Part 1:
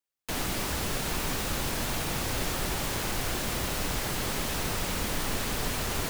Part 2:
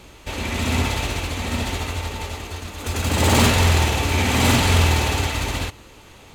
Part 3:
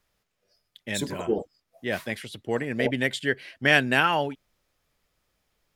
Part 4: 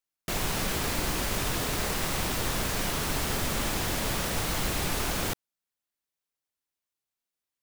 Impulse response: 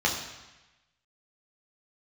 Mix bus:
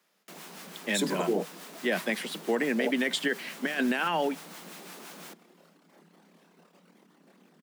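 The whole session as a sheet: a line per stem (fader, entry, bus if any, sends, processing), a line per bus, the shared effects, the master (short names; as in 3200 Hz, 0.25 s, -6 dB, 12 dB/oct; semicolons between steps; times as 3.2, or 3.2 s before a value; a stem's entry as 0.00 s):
-19.5 dB, 1.90 s, no send, formant sharpening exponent 2; chorus voices 2, 0.37 Hz, delay 28 ms, depth 2.1 ms; short-mantissa float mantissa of 4-bit
off
+2.5 dB, 0.00 s, no send, negative-ratio compressor -24 dBFS, ratio -0.5
-12.0 dB, 0.00 s, no send, harmonic tremolo 5.8 Hz, depth 50%, crossover 860 Hz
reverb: off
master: Chebyshev high-pass 160 Hz, order 10; limiter -17.5 dBFS, peak gain reduction 9.5 dB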